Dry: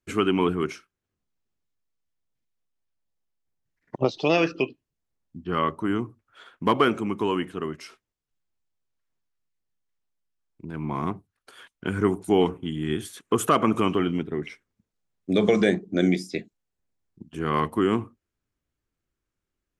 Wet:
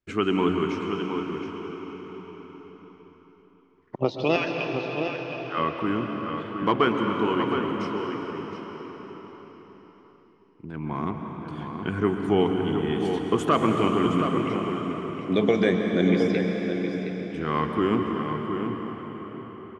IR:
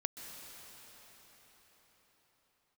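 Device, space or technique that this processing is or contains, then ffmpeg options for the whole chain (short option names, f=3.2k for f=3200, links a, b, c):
cathedral: -filter_complex "[0:a]lowpass=4.9k,asettb=1/sr,asplit=3[a][b][c];[a]atrim=end=4.364[d];[b]atrim=start=4.36:end=5.58,asetpts=PTS-STARTPTS,afade=t=in:d=0.004:c=qsin,afade=t=out:st=1.216:d=0.004:c=qsin,highpass=f=750:w=0.5412,highpass=f=750:w=1.3066[e];[c]atrim=start=5.576[f];[d][e]acrossfade=d=0.004:c1=hsin:c2=qsin[g];[g][f]acrossfade=d=0.004:c1=qsin:c2=hsin[h];[1:a]atrim=start_sample=2205[i];[h][i]afir=irnorm=-1:irlink=0,asplit=2[j][k];[k]adelay=717,lowpass=f=4.5k:p=1,volume=-7dB,asplit=2[l][m];[m]adelay=717,lowpass=f=4.5k:p=1,volume=0.15,asplit=2[n][o];[o]adelay=717,lowpass=f=4.5k:p=1,volume=0.15[p];[j][l][n][p]amix=inputs=4:normalize=0"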